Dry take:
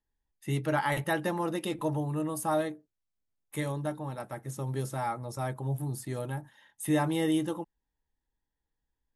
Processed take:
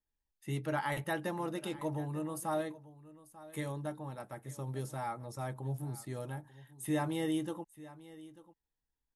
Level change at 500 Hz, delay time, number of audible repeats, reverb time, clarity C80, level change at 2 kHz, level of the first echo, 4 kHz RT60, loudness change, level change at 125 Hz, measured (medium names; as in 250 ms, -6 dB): -6.0 dB, 892 ms, 1, no reverb, no reverb, -6.0 dB, -18.0 dB, no reverb, -6.0 dB, -6.0 dB